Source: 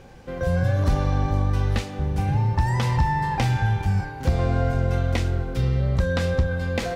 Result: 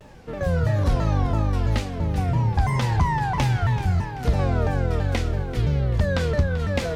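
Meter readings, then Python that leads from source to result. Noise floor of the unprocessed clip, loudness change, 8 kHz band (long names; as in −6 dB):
−35 dBFS, 0.0 dB, +0.5 dB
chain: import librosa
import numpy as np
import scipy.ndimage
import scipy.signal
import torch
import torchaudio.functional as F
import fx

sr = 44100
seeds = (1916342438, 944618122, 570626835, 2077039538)

y = fx.echo_feedback(x, sr, ms=386, feedback_pct=44, wet_db=-13.5)
y = fx.vibrato_shape(y, sr, shape='saw_down', rate_hz=3.0, depth_cents=250.0)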